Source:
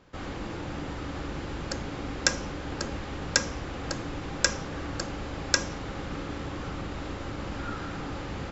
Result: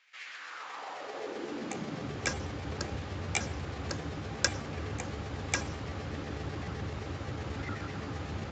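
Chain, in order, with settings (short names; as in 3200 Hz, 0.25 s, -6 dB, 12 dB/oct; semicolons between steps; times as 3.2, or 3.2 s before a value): trilling pitch shifter +6.5 st, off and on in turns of 63 ms; high-pass sweep 2100 Hz -> 84 Hz, 0.24–2.35; downsampling 16000 Hz; gain -4 dB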